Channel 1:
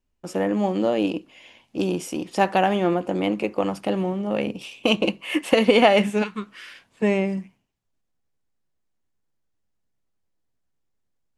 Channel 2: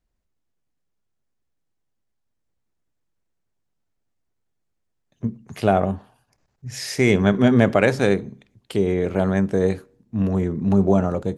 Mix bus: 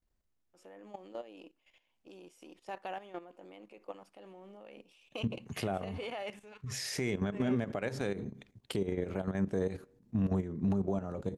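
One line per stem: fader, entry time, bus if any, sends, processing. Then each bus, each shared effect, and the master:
−16.5 dB, 0.30 s, no send, bass and treble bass −14 dB, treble −1 dB
0.0 dB, 0.00 s, no send, downward compressor 4 to 1, threshold −23 dBFS, peak gain reduction 11.5 dB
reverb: not used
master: output level in coarse steps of 13 dB; brickwall limiter −22.5 dBFS, peak gain reduction 9.5 dB

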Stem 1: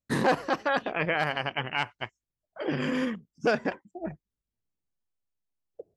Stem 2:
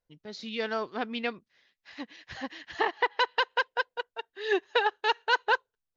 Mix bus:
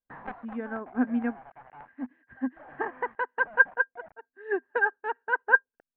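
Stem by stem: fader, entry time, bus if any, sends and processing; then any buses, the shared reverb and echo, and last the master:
−9.0 dB, 0.00 s, no send, low shelf with overshoot 540 Hz −11 dB, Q 3; log-companded quantiser 2 bits; automatic ducking −11 dB, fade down 0.25 s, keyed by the second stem
+0.5 dB, 0.00 s, no send, hollow resonant body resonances 250/1,600 Hz, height 18 dB, ringing for 95 ms; expander for the loud parts 1.5 to 1, over −37 dBFS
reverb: not used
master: inverse Chebyshev low-pass filter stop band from 5,500 Hz, stop band 60 dB

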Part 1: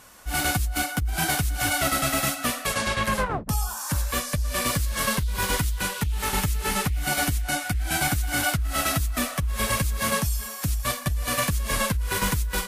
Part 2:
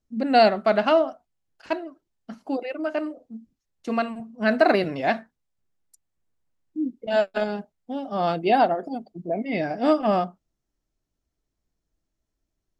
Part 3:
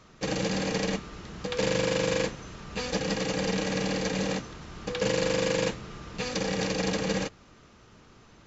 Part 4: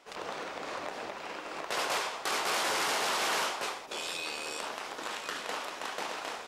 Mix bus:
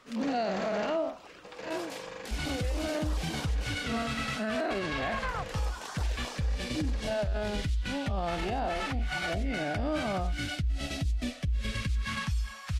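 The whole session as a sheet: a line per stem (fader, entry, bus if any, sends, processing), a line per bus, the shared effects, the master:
−3.5 dB, 2.05 s, no send, low-pass filter 3,600 Hz 12 dB per octave; all-pass phaser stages 2, 0.25 Hz, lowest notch 290–1,200 Hz
−2.5 dB, 0.00 s, no send, spectrum smeared in time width 93 ms
0:00.93 −13.5 dB → 0:01.18 −23.5 dB, 0.00 s, no send, parametric band 1,200 Hz +12.5 dB 3 octaves
−1.0 dB, 0.00 s, no send, reverb reduction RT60 0.55 s; notch on a step sequencer 6.3 Hz 870–2,500 Hz; automatic ducking −8 dB, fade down 1.80 s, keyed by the second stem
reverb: not used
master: brickwall limiter −23 dBFS, peak gain reduction 11.5 dB

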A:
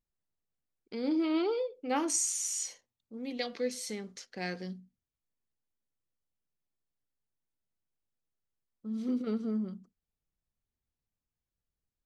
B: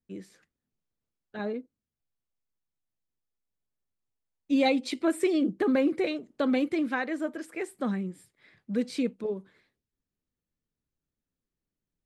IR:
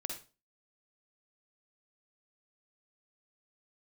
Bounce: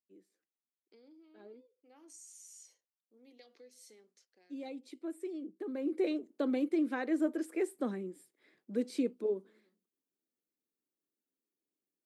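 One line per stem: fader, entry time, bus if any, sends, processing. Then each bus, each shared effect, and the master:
−12.5 dB, 0.00 s, no send, downward compressor 3 to 1, threshold −37 dBFS, peak gain reduction 8.5 dB; automatic ducking −10 dB, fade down 0.50 s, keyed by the second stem
0:05.48 −15.5 dB → 0:06.08 −4 dB, 0.00 s, no send, low-shelf EQ 450 Hz +10 dB; speech leveller within 4 dB 0.5 s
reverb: not used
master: four-pole ladder high-pass 270 Hz, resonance 40%; high-shelf EQ 7,600 Hz +12 dB

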